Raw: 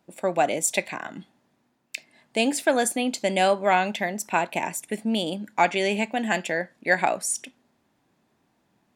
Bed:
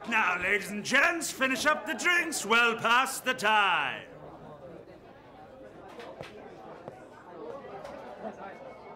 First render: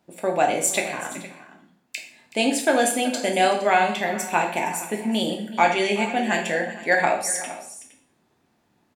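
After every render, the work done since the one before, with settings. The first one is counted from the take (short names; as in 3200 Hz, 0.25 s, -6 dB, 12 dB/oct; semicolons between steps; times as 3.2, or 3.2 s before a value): tapped delay 0.376/0.465 s -17.5/-17.5 dB; plate-style reverb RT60 0.55 s, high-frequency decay 0.95×, DRR 1.5 dB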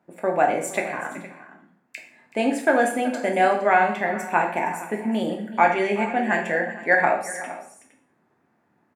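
HPF 110 Hz; resonant high shelf 2500 Hz -10.5 dB, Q 1.5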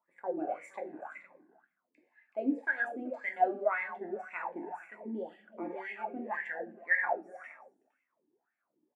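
wah 1.9 Hz 300–2100 Hz, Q 7.5; cascading phaser falling 1.6 Hz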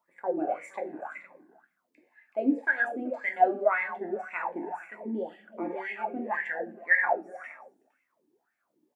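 gain +5.5 dB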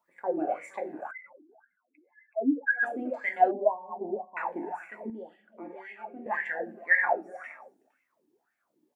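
1.11–2.83 spectral contrast raised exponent 2.7; 3.51–4.37 brick-wall FIR low-pass 1100 Hz; 5.1–6.26 gain -9 dB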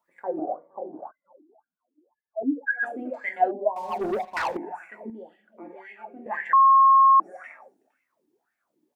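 0.39–2.43 steep low-pass 1100 Hz 48 dB/oct; 3.76–4.57 sample leveller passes 3; 6.53–7.2 bleep 1080 Hz -12 dBFS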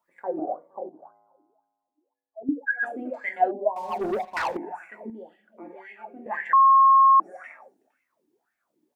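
0.89–2.49 resonator 55 Hz, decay 1.6 s, harmonics odd, mix 70%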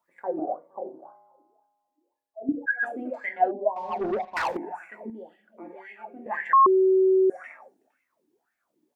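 0.83–2.66 flutter echo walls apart 5.4 m, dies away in 0.3 s; 3.26–4.36 air absorption 150 m; 6.66–7.3 bleep 378 Hz -16 dBFS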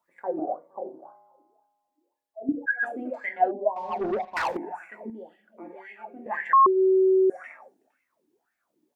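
6.53–6.94 bell 160 Hz -> 860 Hz -5 dB 0.34 oct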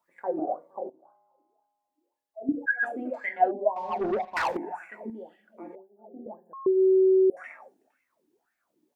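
0.9–2.63 fade in, from -14.5 dB; 5.75–7.37 inverse Chebyshev band-stop 2000–4400 Hz, stop band 80 dB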